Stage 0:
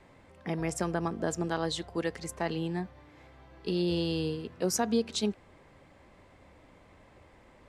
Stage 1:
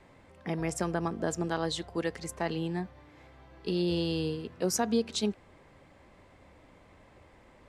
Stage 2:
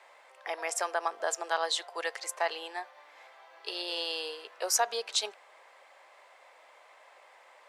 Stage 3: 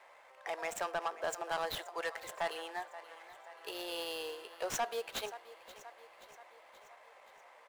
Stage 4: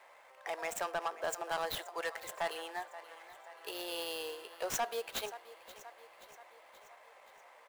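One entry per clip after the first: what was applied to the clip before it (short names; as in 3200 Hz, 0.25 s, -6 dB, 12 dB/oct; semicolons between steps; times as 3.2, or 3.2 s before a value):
nothing audible
inverse Chebyshev high-pass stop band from 180 Hz, stop band 60 dB; gain +5 dB
median filter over 9 samples; feedback echo 0.528 s, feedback 58%, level -18 dB; soft clip -26 dBFS, distortion -11 dB; gain -1.5 dB
high shelf 11000 Hz +7.5 dB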